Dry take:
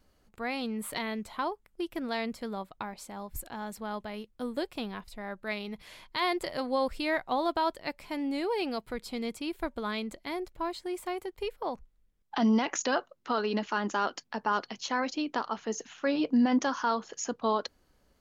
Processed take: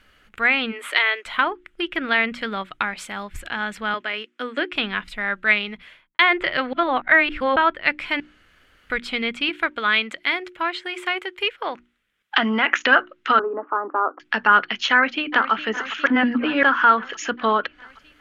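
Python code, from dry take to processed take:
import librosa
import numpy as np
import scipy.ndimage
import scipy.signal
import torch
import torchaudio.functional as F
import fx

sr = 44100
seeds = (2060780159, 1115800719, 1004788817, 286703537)

y = fx.ellip_highpass(x, sr, hz=330.0, order=4, stop_db=40, at=(0.71, 1.25), fade=0.02)
y = fx.high_shelf(y, sr, hz=7900.0, db=8.0, at=(2.23, 3.24))
y = fx.cabinet(y, sr, low_hz=280.0, low_slope=24, high_hz=8300.0, hz=(280.0, 850.0, 3800.0), db=(4, -4, -4), at=(3.94, 4.72))
y = fx.studio_fade_out(y, sr, start_s=5.47, length_s=0.72)
y = fx.highpass(y, sr, hz=350.0, slope=6, at=(9.49, 12.84))
y = fx.cheby1_bandpass(y, sr, low_hz=280.0, high_hz=1200.0, order=4, at=(13.39, 14.2))
y = fx.echo_throw(y, sr, start_s=14.91, length_s=0.61, ms=410, feedback_pct=70, wet_db=-13.5)
y = fx.edit(y, sr, fx.reverse_span(start_s=6.73, length_s=0.83),
    fx.room_tone_fill(start_s=8.2, length_s=0.7),
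    fx.reverse_span(start_s=16.06, length_s=0.57), tone=tone)
y = fx.env_lowpass_down(y, sr, base_hz=2000.0, full_db=-27.0)
y = fx.band_shelf(y, sr, hz=2100.0, db=14.5, octaves=1.7)
y = fx.hum_notches(y, sr, base_hz=60, count=6)
y = y * librosa.db_to_amplitude(6.5)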